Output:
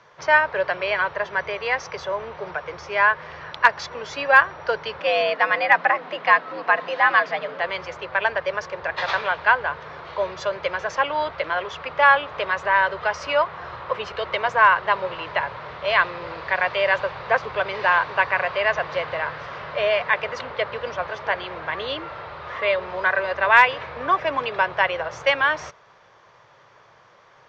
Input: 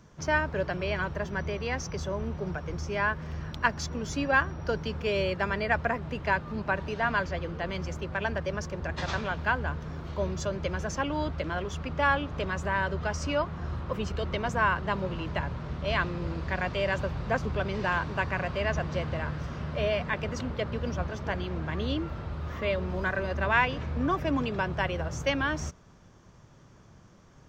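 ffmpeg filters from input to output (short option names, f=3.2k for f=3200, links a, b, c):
-filter_complex "[0:a]asettb=1/sr,asplit=3[a][b][c];[a]atrim=end=4.994[d];[b]atrim=start=4.99:end=7.6,asetpts=PTS-STARTPTS,afade=t=in:d=0.004:c=qsin,afade=t=out:st=2.606:d=0.004:c=qsin,afreqshift=99[e];[c]atrim=start=7.596[f];[d][e]acrossfade=d=0.004:c1=hsin:c2=qsin[g];[g][f]acrossfade=d=0.004:c1=qsin:c2=hsin,acrossover=split=400 5900:gain=0.112 1 0.1[h][i][j];[h][i][j]amix=inputs=3:normalize=0,volume=15dB,asoftclip=hard,volume=-15dB,equalizer=f=125:t=o:w=1:g=11,equalizer=f=250:t=o:w=1:g=-4,equalizer=f=500:t=o:w=1:g=8,equalizer=f=1k:t=o:w=1:g=8,equalizer=f=2k:t=o:w=1:g=9,equalizer=f=4k:t=o:w=1:g=7"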